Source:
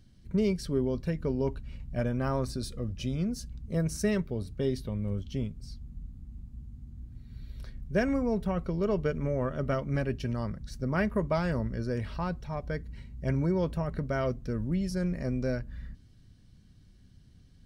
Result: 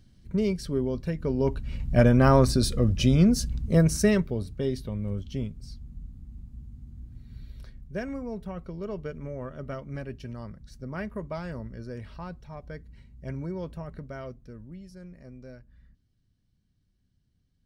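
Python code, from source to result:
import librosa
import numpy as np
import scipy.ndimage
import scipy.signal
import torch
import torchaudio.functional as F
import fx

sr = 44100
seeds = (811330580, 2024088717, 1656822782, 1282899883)

y = fx.gain(x, sr, db=fx.line((1.18, 1.0), (1.95, 11.5), (3.54, 11.5), (4.62, 1.0), (7.37, 1.0), (8.01, -6.5), (13.89, -6.5), (14.89, -15.0)))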